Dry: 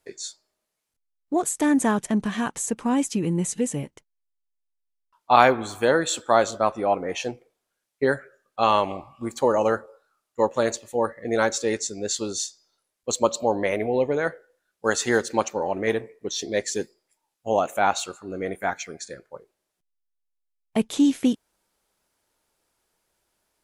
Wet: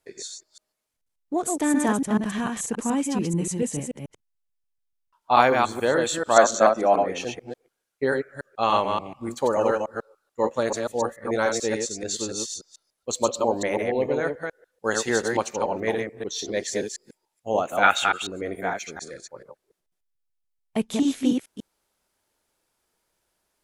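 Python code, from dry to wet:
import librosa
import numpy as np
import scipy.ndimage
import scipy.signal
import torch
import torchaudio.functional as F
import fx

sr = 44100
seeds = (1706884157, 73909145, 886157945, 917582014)

y = fx.reverse_delay(x, sr, ms=145, wet_db=-3.5)
y = fx.graphic_eq_15(y, sr, hz=(100, 250, 630, 1600, 6300), db=(-9, 5, 6, 7, 11), at=(6.36, 7.03))
y = fx.spec_box(y, sr, start_s=17.83, length_s=0.46, low_hz=1200.0, high_hz=3800.0, gain_db=11)
y = F.gain(torch.from_numpy(y), -2.5).numpy()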